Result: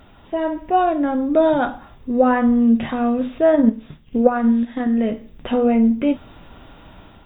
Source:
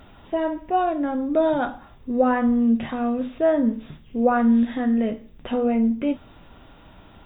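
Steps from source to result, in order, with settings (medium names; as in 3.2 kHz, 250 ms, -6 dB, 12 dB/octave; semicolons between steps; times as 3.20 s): 3.52–4.87 s: transient shaper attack +9 dB, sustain -5 dB; level rider gain up to 5 dB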